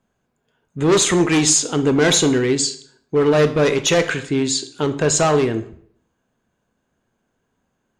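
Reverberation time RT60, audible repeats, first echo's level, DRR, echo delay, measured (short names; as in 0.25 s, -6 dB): 0.60 s, none, none, 9.0 dB, none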